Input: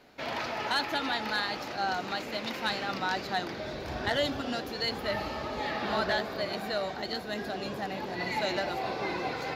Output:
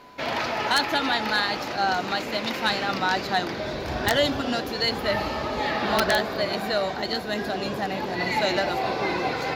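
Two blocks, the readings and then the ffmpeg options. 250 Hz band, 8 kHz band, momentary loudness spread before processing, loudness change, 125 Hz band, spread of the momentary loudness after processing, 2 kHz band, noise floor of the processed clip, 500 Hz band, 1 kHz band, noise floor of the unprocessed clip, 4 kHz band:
+7.0 dB, +9.5 dB, 6 LU, +7.0 dB, +7.0 dB, 6 LU, +7.0 dB, -32 dBFS, +7.0 dB, +7.0 dB, -39 dBFS, +7.0 dB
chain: -af "aeval=exprs='(mod(7.94*val(0)+1,2)-1)/7.94':c=same,aeval=exprs='val(0)+0.00178*sin(2*PI*1000*n/s)':c=same,volume=7dB"

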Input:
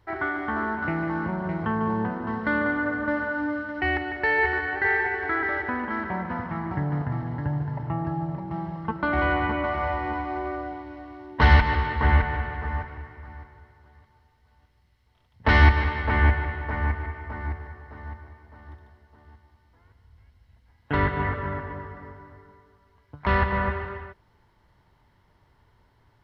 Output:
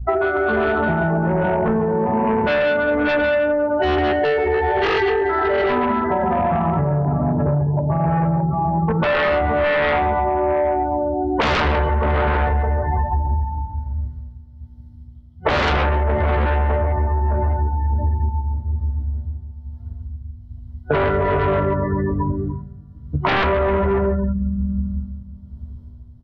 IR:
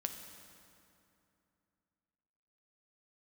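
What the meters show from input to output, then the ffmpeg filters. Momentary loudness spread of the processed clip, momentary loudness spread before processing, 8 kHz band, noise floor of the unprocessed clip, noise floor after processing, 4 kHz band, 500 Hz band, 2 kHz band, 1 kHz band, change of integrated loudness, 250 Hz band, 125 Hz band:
14 LU, 17 LU, n/a, -63 dBFS, -40 dBFS, +8.0 dB, +14.0 dB, +2.0 dB, +7.5 dB, +6.0 dB, +7.5 dB, +6.5 dB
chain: -filter_complex "[0:a]aecho=1:1:139:0.596,asplit=2[a][b];[1:a]atrim=start_sample=2205,lowpass=2.6k,adelay=13[c];[b][c]afir=irnorm=-1:irlink=0,volume=4.5dB[d];[a][d]amix=inputs=2:normalize=0,aeval=exprs='val(0)+0.0141*(sin(2*PI*60*n/s)+sin(2*PI*2*60*n/s)/2+sin(2*PI*3*60*n/s)/3+sin(2*PI*4*60*n/s)/4+sin(2*PI*5*60*n/s)/5)':c=same,afftdn=nr=32:nf=-26,superequalizer=6b=0.501:7b=2.82:8b=3.16:11b=0.355:12b=0.251,tremolo=f=1.2:d=0.52,acrossover=split=180|3000[e][f][g];[e]acompressor=threshold=-19dB:ratio=3[h];[h][f][g]amix=inputs=3:normalize=0,bandreject=f=60:t=h:w=6,bandreject=f=120:t=h:w=6,bandreject=f=180:t=h:w=6,aeval=exprs='0.75*sin(PI/2*3.98*val(0)/0.75)':c=same,highshelf=f=3.1k:g=10.5,alimiter=limit=-8.5dB:level=0:latency=1:release=329,acompressor=threshold=-20dB:ratio=10,volume=4dB"

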